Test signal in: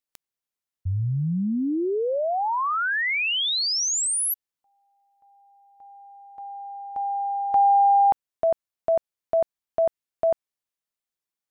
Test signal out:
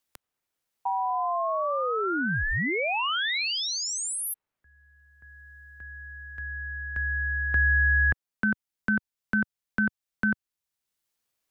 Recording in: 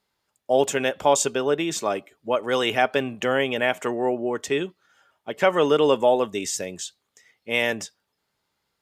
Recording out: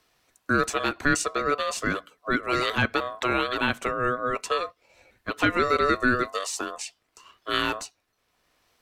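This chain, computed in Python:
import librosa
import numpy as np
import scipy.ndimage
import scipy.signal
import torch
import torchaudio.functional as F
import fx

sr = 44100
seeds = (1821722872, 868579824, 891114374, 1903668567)

y = x * np.sin(2.0 * np.pi * 870.0 * np.arange(len(x)) / sr)
y = fx.band_squash(y, sr, depth_pct=40)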